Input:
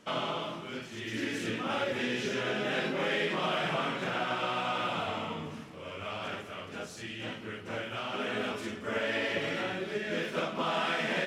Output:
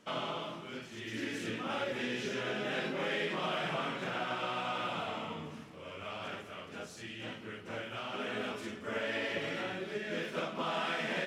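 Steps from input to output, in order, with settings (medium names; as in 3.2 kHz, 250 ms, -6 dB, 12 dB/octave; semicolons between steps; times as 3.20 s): hum notches 50/100 Hz; trim -4 dB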